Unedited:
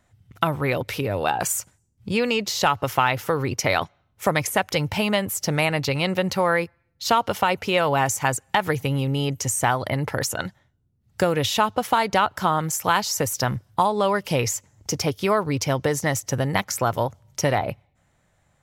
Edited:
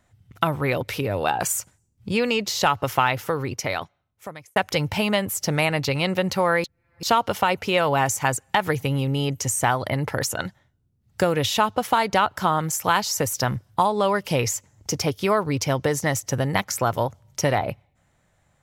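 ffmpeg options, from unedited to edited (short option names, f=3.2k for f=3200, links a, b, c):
-filter_complex "[0:a]asplit=4[a][b][c][d];[a]atrim=end=4.56,asetpts=PTS-STARTPTS,afade=t=out:st=3.01:d=1.55[e];[b]atrim=start=4.56:end=6.642,asetpts=PTS-STARTPTS,afade=t=in:d=0.004:c=hsin[f];[c]atrim=start=6.638:end=7.032,asetpts=PTS-STARTPTS,areverse[g];[d]atrim=start=7.028[h];[e][f]concat=n=2:v=0:a=1[i];[i][g]acrossfade=d=0.004:c1=hsin:c2=hsin[j];[j][h]acrossfade=d=0.004:c1=hsin:c2=hsin"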